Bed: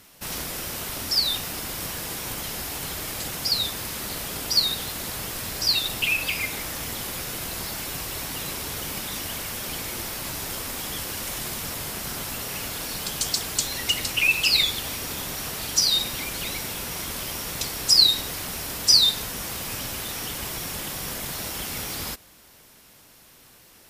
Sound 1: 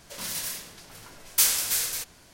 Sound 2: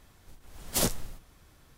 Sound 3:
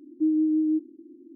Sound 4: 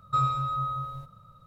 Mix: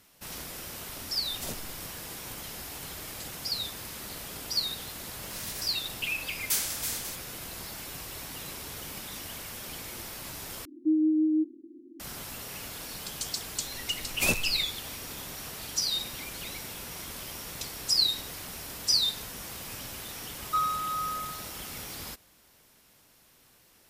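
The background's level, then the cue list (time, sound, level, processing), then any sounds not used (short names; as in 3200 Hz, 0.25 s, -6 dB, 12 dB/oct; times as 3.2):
bed -8.5 dB
0.66 add 2 -11.5 dB
5.12 add 1 -7.5 dB
10.65 replace with 3 -1.5 dB
13.46 add 2 -2 dB
20.4 add 4 -1.5 dB + HPF 630 Hz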